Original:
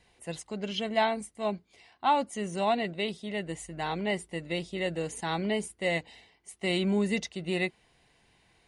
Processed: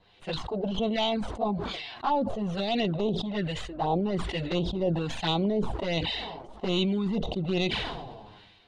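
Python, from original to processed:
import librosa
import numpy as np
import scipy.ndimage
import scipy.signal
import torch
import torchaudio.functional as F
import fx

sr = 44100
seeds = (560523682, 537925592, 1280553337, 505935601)

p1 = fx.tracing_dist(x, sr, depth_ms=0.13)
p2 = fx.over_compress(p1, sr, threshold_db=-30.0, ratio=-0.5)
p3 = p1 + (p2 * 10.0 ** (1.5 / 20.0))
p4 = fx.high_shelf_res(p3, sr, hz=2700.0, db=10.5, q=3.0)
p5 = fx.quant_dither(p4, sr, seeds[0], bits=10, dither='none')
p6 = fx.env_flanger(p5, sr, rest_ms=11.1, full_db=-16.0)
p7 = fx.filter_lfo_lowpass(p6, sr, shape='sine', hz=1.2, low_hz=730.0, high_hz=2100.0, q=2.0)
p8 = fx.sustainer(p7, sr, db_per_s=36.0)
y = p8 * 10.0 ** (-2.5 / 20.0)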